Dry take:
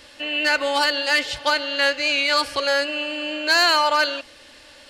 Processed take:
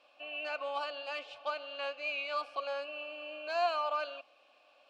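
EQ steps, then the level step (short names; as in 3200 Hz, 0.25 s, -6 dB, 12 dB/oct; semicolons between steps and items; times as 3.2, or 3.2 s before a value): vowel filter a; low shelf 94 Hz -6.5 dB; -3.5 dB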